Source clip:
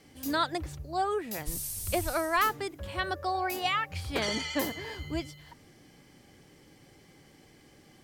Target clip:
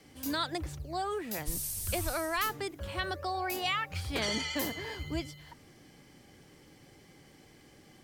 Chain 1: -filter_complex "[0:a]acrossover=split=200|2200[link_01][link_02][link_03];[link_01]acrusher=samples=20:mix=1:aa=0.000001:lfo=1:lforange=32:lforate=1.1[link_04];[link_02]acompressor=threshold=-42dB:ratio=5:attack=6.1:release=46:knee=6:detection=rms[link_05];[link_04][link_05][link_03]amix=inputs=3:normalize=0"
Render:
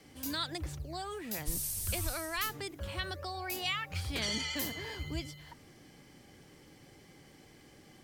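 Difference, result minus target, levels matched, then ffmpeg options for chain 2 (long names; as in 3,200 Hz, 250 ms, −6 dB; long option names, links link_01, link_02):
downward compressor: peak gain reduction +8 dB
-filter_complex "[0:a]acrossover=split=200|2200[link_01][link_02][link_03];[link_01]acrusher=samples=20:mix=1:aa=0.000001:lfo=1:lforange=32:lforate=1.1[link_04];[link_02]acompressor=threshold=-32dB:ratio=5:attack=6.1:release=46:knee=6:detection=rms[link_05];[link_04][link_05][link_03]amix=inputs=3:normalize=0"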